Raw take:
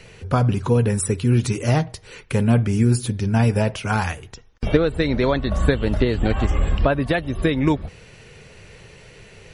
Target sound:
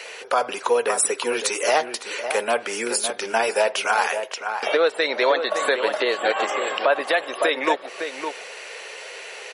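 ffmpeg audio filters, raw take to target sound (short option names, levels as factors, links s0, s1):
-filter_complex "[0:a]highpass=f=510:w=0.5412,highpass=f=510:w=1.3066,asplit=2[s0][s1];[s1]acompressor=threshold=0.0126:ratio=6,volume=1.19[s2];[s0][s2]amix=inputs=2:normalize=0,asplit=2[s3][s4];[s4]adelay=559.8,volume=0.398,highshelf=f=4000:g=-12.6[s5];[s3][s5]amix=inputs=2:normalize=0,alimiter=level_in=3.98:limit=0.891:release=50:level=0:latency=1,volume=0.422"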